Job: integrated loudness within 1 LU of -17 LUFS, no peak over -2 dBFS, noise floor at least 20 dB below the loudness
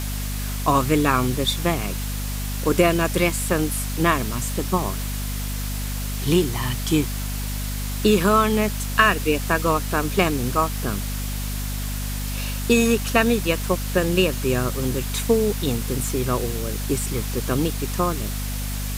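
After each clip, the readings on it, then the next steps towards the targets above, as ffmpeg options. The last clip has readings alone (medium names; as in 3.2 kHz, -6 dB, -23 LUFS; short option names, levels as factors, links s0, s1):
hum 50 Hz; highest harmonic 250 Hz; hum level -25 dBFS; noise floor -27 dBFS; noise floor target -43 dBFS; loudness -22.5 LUFS; peak level -4.0 dBFS; loudness target -17.0 LUFS
-> -af "bandreject=f=50:t=h:w=4,bandreject=f=100:t=h:w=4,bandreject=f=150:t=h:w=4,bandreject=f=200:t=h:w=4,bandreject=f=250:t=h:w=4"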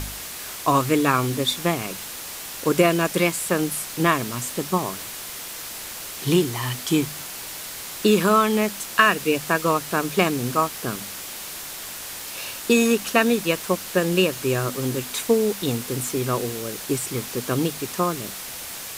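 hum not found; noise floor -35 dBFS; noise floor target -43 dBFS
-> -af "afftdn=nr=8:nf=-35"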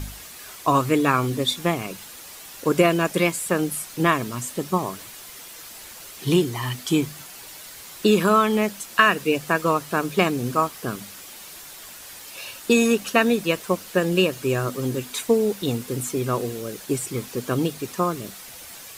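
noise floor -41 dBFS; noise floor target -43 dBFS
-> -af "afftdn=nr=6:nf=-41"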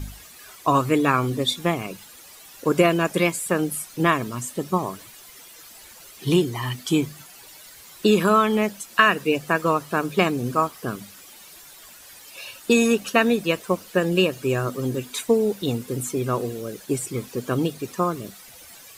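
noise floor -46 dBFS; loudness -23.0 LUFS; peak level -4.0 dBFS; loudness target -17.0 LUFS
-> -af "volume=2,alimiter=limit=0.794:level=0:latency=1"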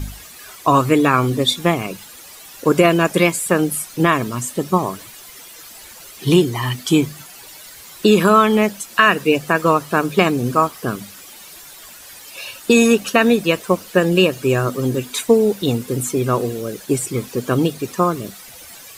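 loudness -17.5 LUFS; peak level -2.0 dBFS; noise floor -40 dBFS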